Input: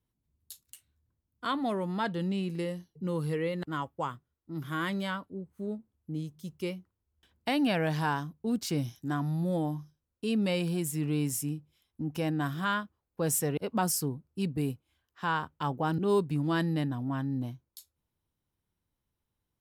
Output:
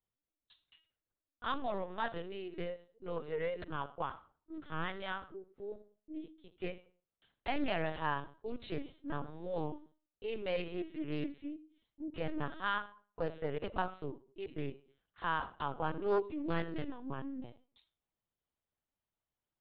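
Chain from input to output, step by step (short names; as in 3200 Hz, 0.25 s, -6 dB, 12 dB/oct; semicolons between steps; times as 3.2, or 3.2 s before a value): steep high-pass 270 Hz 36 dB/oct; on a send at -12 dB: reverb RT60 0.40 s, pre-delay 10 ms; on the sum: LPC vocoder at 8 kHz pitch kept; Doppler distortion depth 0.29 ms; gain -4 dB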